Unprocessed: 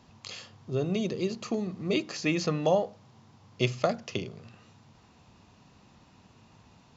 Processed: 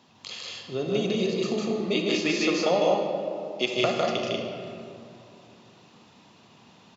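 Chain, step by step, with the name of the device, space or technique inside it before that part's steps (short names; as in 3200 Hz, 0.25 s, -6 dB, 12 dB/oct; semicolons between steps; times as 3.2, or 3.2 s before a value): stadium PA (HPF 190 Hz 12 dB/oct; bell 3400 Hz +6 dB 0.56 oct; loudspeakers at several distances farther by 53 m -2 dB, 65 m -3 dB; reverb RT60 2.6 s, pre-delay 33 ms, DRR 4 dB); 2.34–3.74 HPF 190 Hz 24 dB/oct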